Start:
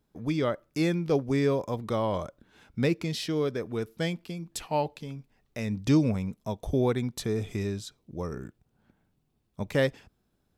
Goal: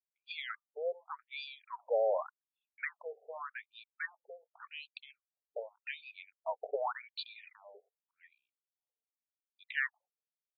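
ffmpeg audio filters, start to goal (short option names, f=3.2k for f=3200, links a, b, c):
-af "highpass=260,lowpass=6.8k,anlmdn=0.0158,afftfilt=real='re*between(b*sr/1024,550*pow(3400/550,0.5+0.5*sin(2*PI*0.86*pts/sr))/1.41,550*pow(3400/550,0.5+0.5*sin(2*PI*0.86*pts/sr))*1.41)':imag='im*between(b*sr/1024,550*pow(3400/550,0.5+0.5*sin(2*PI*0.86*pts/sr))/1.41,550*pow(3400/550,0.5+0.5*sin(2*PI*0.86*pts/sr))*1.41)':win_size=1024:overlap=0.75,volume=1dB"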